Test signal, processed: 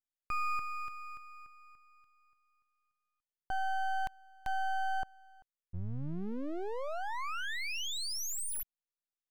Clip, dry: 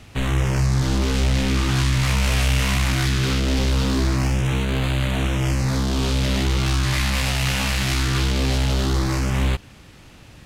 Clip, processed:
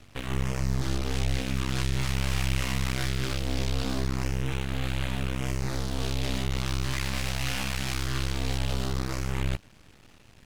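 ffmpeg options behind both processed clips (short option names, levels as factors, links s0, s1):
-af "aeval=exprs='max(val(0),0)':c=same,volume=0.531"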